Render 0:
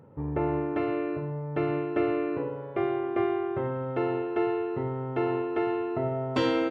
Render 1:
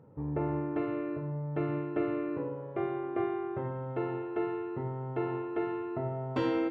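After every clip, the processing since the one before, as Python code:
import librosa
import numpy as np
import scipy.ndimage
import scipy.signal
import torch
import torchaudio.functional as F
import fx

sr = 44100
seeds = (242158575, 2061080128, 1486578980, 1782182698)

y = fx.high_shelf(x, sr, hz=2600.0, db=-10.0)
y = fx.room_shoebox(y, sr, seeds[0], volume_m3=370.0, walls='furnished', distance_m=0.53)
y = y * 10.0 ** (-4.0 / 20.0)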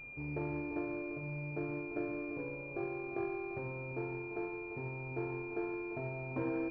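y = x + 10.0 ** (-11.0 / 20.0) * np.pad(x, (int(345 * sr / 1000.0), 0))[:len(x)]
y = fx.dmg_noise_colour(y, sr, seeds[1], colour='pink', level_db=-53.0)
y = fx.pwm(y, sr, carrier_hz=2400.0)
y = y * 10.0 ** (-6.5 / 20.0)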